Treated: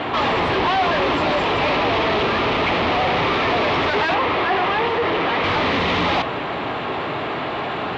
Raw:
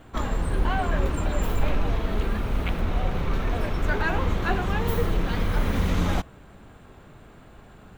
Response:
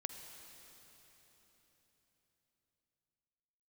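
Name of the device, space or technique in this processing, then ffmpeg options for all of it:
overdrive pedal into a guitar cabinet: -filter_complex "[0:a]asplit=2[link_01][link_02];[link_02]highpass=frequency=720:poles=1,volume=41dB,asoftclip=type=tanh:threshold=-10dB[link_03];[link_01][link_03]amix=inputs=2:normalize=0,lowpass=frequency=3600:poles=1,volume=-6dB,highpass=100,equalizer=frequency=200:width_type=q:width=4:gain=-8,equalizer=frequency=520:width_type=q:width=4:gain=-3,equalizer=frequency=1500:width_type=q:width=4:gain=-8,lowpass=frequency=4100:width=0.5412,lowpass=frequency=4100:width=1.3066,asettb=1/sr,asplit=3[link_04][link_05][link_06];[link_04]atrim=end=4.144[link_07];[link_05]atrim=start=4.14:end=5.44,asetpts=PTS-STARTPTS,afade=type=in:duration=0.004:curve=qsin,afade=type=out:start_time=1.296:duration=0.004:curve=qsin,bass=frequency=250:gain=-6,treble=frequency=4000:gain=-10[link_08];[link_06]atrim=start=5.436[link_09];[link_07][link_08]acrossfade=duration=0.004:curve1=hsin:curve2=qsin[link_10];[link_10][link_09]acrossfade=duration=0.004:curve1=qsin:curve2=hsin"

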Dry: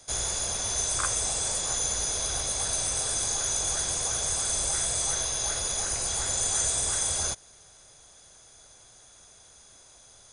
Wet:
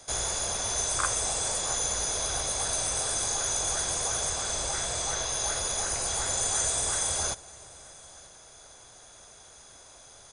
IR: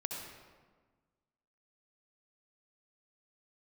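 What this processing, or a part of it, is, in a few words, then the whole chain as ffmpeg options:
compressed reverb return: -filter_complex "[0:a]asettb=1/sr,asplit=3[link_01][link_02][link_03];[link_01]atrim=end=4.304[link_04];[link_02]atrim=start=4.3:end=5.29,asetpts=PTS-STARTPTS,afade=type=in:duration=0.004:curve=qsin,afade=type=out:start_time=0.986:duration=0.004:curve=qsin,lowpass=7300[link_05];[link_03]atrim=start=5.286[link_06];[link_04][link_05]acrossfade=duration=0.004:curve1=hsin:curve2=qsin[link_07];[link_07][link_06]acrossfade=duration=0.004:curve1=qsin:curve2=hsin,asplit=2[link_08][link_09];[1:a]atrim=start_sample=2205[link_10];[link_09][link_10]afir=irnorm=-1:irlink=0,acompressor=threshold=-43dB:ratio=6,volume=-5.5dB[link_11];[link_08][link_11]amix=inputs=2:normalize=0,equalizer=frequency=850:width=0.47:gain=4.5,aecho=1:1:932:0.0668,volume=-2dB"

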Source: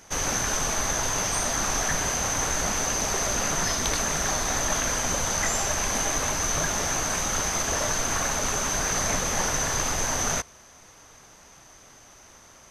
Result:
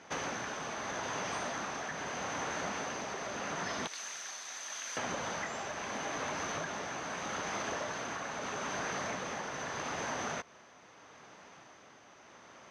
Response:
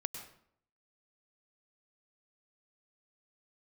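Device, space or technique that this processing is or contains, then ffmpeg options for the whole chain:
AM radio: -filter_complex "[0:a]asettb=1/sr,asplit=3[link_01][link_02][link_03];[link_01]atrim=end=3.874[link_04];[link_02]atrim=start=3.87:end=4.97,asetpts=PTS-STARTPTS,afade=type=in:duration=0.004:curve=qsin,afade=type=out:start_time=1.096:duration=0.004:curve=qsin,aderivative[link_05];[link_03]atrim=start=4.966[link_06];[link_04][link_05]acrossfade=duration=0.004:curve1=hsin:curve2=qsin[link_07];[link_07][link_06]acrossfade=duration=0.004:curve1=qsin:curve2=hsin,highpass=170,lowpass=3300,acompressor=threshold=-33dB:ratio=6,asoftclip=type=tanh:threshold=-24dB,tremolo=f=0.79:d=0.3"

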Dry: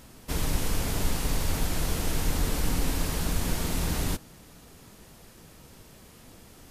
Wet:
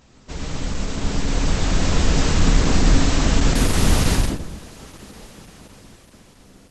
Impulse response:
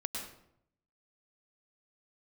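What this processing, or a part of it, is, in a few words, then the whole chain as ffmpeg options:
speakerphone in a meeting room: -filter_complex "[1:a]atrim=start_sample=2205[link_01];[0:a][link_01]afir=irnorm=-1:irlink=0,dynaudnorm=framelen=270:gausssize=11:maxgain=15.5dB" -ar 48000 -c:a libopus -b:a 12k

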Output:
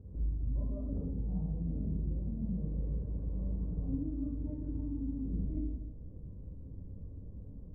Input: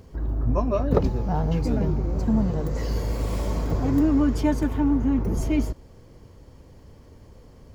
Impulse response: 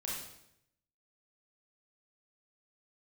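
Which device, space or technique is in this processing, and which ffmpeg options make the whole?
television next door: -filter_complex "[0:a]acompressor=threshold=-35dB:ratio=5,lowpass=270[link_01];[1:a]atrim=start_sample=2205[link_02];[link_01][link_02]afir=irnorm=-1:irlink=0"

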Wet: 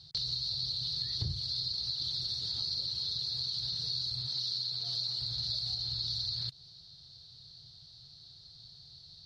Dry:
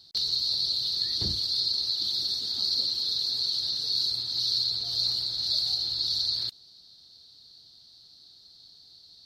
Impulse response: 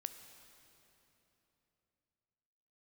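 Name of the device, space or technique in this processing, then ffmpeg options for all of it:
jukebox: -filter_complex "[0:a]asettb=1/sr,asplit=3[link_01][link_02][link_03];[link_01]atrim=end=4.274[link_04];[link_02]atrim=start=4.27:end=5.21,asetpts=PTS-STARTPTS,afade=type=in:duration=0.004:curve=qsin,afade=type=out:start_time=0.936:duration=0.004:curve=qsin,highpass=190[link_05];[link_03]atrim=start=5.206[link_06];[link_04][link_05]acrossfade=duration=0.004:curve1=hsin:curve2=qsin[link_07];[link_07][link_06]acrossfade=duration=0.004:curve1=qsin:curve2=hsin,lowpass=6400,lowshelf=frequency=180:width_type=q:width=3:gain=8.5,acompressor=threshold=-33dB:ratio=4"

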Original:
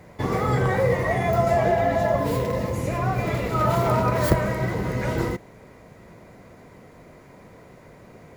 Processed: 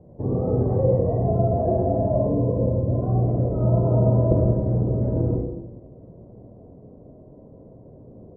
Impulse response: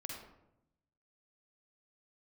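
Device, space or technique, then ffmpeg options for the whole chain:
next room: -filter_complex "[0:a]lowpass=frequency=610:width=0.5412,lowpass=frequency=610:width=1.3066[link_01];[1:a]atrim=start_sample=2205[link_02];[link_01][link_02]afir=irnorm=-1:irlink=0,volume=4dB"

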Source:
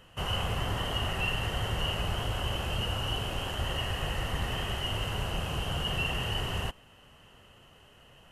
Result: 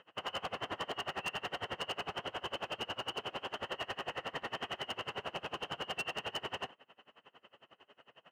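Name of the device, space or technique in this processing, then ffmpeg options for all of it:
helicopter radio: -af "highpass=320,lowpass=2800,aeval=exprs='val(0)*pow(10,-27*(0.5-0.5*cos(2*PI*11*n/s))/20)':channel_layout=same,asoftclip=type=hard:threshold=-35.5dB,volume=3.5dB"

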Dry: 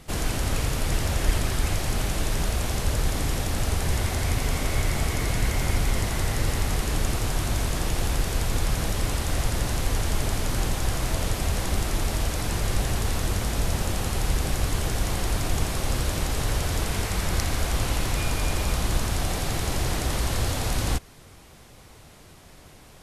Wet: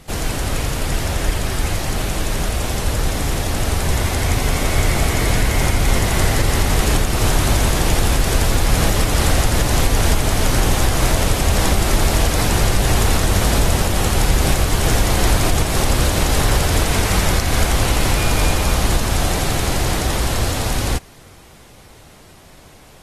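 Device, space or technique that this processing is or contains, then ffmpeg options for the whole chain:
low-bitrate web radio: -af "dynaudnorm=framelen=630:gausssize=17:maxgain=11.5dB,alimiter=limit=-9.5dB:level=0:latency=1:release=248,volume=4dB" -ar 48000 -c:a aac -b:a 48k

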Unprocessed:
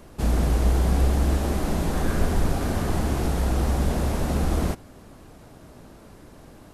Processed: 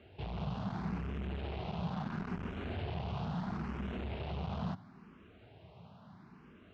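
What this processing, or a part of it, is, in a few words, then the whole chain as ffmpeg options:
barber-pole phaser into a guitar amplifier: -filter_complex "[0:a]asplit=2[link_01][link_02];[link_02]afreqshift=0.74[link_03];[link_01][link_03]amix=inputs=2:normalize=1,asoftclip=type=tanh:threshold=-26dB,highpass=99,equalizer=frequency=99:width_type=q:width=4:gain=5,equalizer=frequency=180:width_type=q:width=4:gain=5,equalizer=frequency=300:width_type=q:width=4:gain=-9,equalizer=frequency=530:width_type=q:width=4:gain=-8,equalizer=frequency=1800:width_type=q:width=4:gain=-4,equalizer=frequency=2800:width_type=q:width=4:gain=4,lowpass=frequency=3700:width=0.5412,lowpass=frequency=3700:width=1.3066,volume=-4.5dB"

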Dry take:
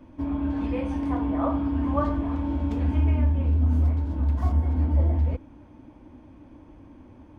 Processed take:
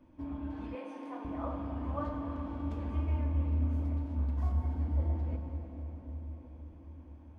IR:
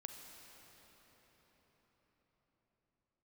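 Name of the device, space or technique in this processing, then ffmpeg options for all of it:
cathedral: -filter_complex "[1:a]atrim=start_sample=2205[link_01];[0:a][link_01]afir=irnorm=-1:irlink=0,asettb=1/sr,asplit=3[link_02][link_03][link_04];[link_02]atrim=end=0.754[link_05];[link_03]atrim=start=0.75:end=1.25,asetpts=PTS-STARTPTS,afade=type=in:duration=0.004:curve=qsin,afade=type=out:start_time=0.496:duration=0.004:curve=qsin,highpass=frequency=290:width=0.5412,highpass=frequency=290:width=1.3066[link_06];[link_04]atrim=start=1.246[link_07];[link_05][link_06]acrossfade=duration=0.004:curve1=hsin:curve2=qsin[link_08];[link_08][link_07]acrossfade=duration=0.004:curve1=qsin:curve2=hsin,volume=-6dB"

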